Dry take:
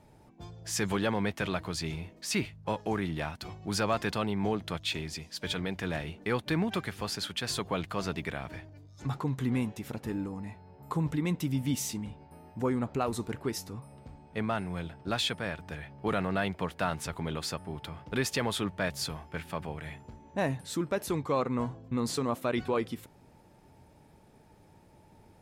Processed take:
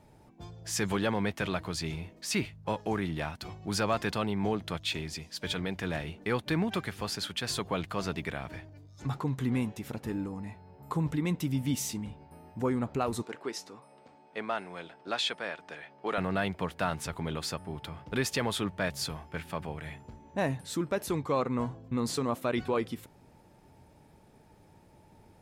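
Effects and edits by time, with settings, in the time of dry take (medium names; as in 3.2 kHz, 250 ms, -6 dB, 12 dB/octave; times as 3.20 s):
13.22–16.18 s: band-pass 370–7400 Hz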